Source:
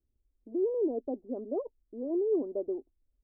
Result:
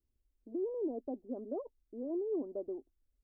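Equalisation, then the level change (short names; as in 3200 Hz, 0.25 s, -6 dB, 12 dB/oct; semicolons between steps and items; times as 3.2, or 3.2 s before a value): dynamic EQ 440 Hz, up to -5 dB, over -39 dBFS, Q 1.7; -3.0 dB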